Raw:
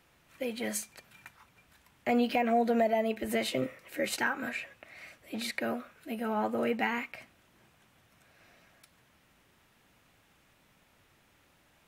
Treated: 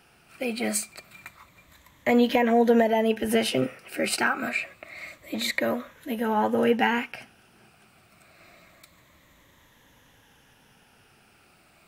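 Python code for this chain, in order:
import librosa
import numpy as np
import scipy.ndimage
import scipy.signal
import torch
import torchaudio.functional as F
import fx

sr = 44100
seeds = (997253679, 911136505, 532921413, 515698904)

y = fx.spec_ripple(x, sr, per_octave=1.1, drift_hz=-0.27, depth_db=8)
y = y * 10.0 ** (6.5 / 20.0)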